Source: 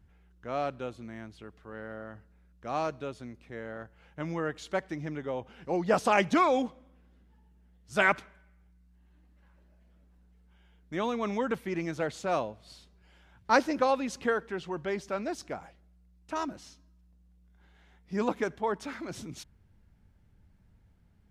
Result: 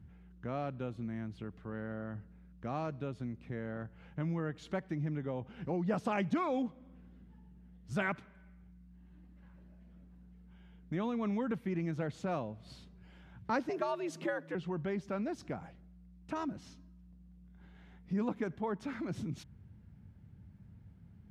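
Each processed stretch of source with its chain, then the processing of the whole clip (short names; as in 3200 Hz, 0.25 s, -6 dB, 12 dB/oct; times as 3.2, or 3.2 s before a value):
13.69–14.55 high shelf 8700 Hz +8.5 dB + frequency shift +100 Hz
whole clip: HPF 120 Hz 12 dB/oct; tone controls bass +15 dB, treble -7 dB; compressor 2:1, threshold -39 dBFS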